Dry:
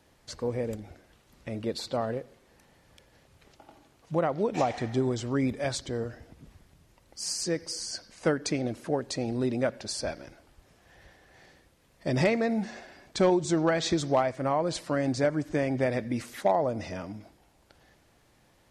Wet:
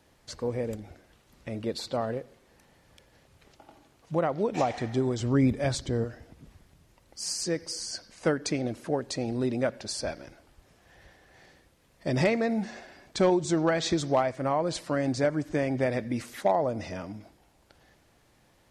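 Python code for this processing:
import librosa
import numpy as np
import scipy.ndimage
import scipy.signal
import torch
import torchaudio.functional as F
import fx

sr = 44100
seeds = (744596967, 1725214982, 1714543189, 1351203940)

y = fx.low_shelf(x, sr, hz=270.0, db=8.5, at=(5.2, 6.05))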